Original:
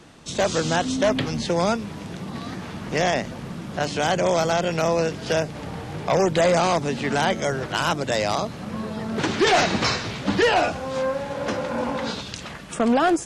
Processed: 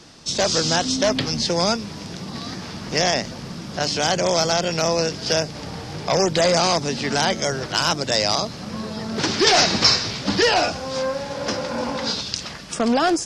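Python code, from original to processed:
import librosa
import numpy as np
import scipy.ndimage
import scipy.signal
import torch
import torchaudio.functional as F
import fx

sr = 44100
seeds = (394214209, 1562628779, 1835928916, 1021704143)

y = fx.peak_eq(x, sr, hz=5100.0, db=14.0, octaves=0.69)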